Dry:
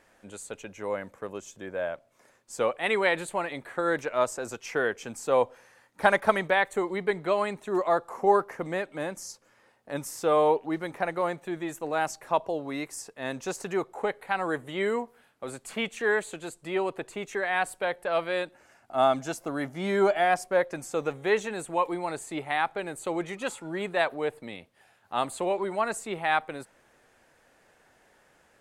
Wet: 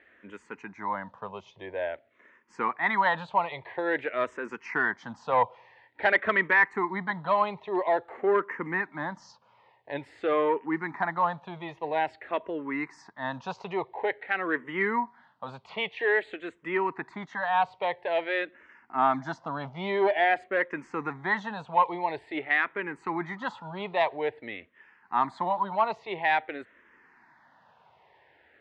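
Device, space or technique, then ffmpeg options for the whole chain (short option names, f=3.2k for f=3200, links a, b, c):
barber-pole phaser into a guitar amplifier: -filter_complex "[0:a]asplit=2[a][b];[b]afreqshift=-0.49[c];[a][c]amix=inputs=2:normalize=1,asoftclip=type=tanh:threshold=-18dB,highpass=79,equalizer=f=530:t=q:w=4:g=-4,equalizer=f=960:t=q:w=4:g=10,equalizer=f=1.9k:t=q:w=4:g=8,lowpass=f=3.9k:w=0.5412,lowpass=f=3.9k:w=1.3066,volume=2dB"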